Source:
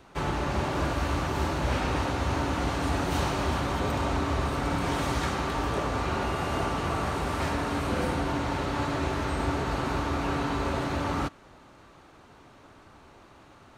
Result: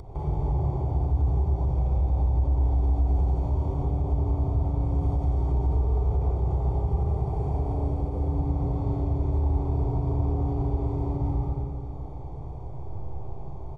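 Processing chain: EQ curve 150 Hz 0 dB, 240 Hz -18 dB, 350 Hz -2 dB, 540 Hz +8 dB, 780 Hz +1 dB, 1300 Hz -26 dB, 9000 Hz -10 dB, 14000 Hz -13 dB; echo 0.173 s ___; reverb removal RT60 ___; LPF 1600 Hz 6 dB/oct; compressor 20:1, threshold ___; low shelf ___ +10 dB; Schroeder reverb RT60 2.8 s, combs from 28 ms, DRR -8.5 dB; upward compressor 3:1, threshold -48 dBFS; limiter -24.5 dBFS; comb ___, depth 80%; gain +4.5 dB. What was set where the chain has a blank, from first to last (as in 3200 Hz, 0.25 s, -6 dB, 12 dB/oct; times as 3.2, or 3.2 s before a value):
-6.5 dB, 0.85 s, -41 dBFS, 160 Hz, 0.9 ms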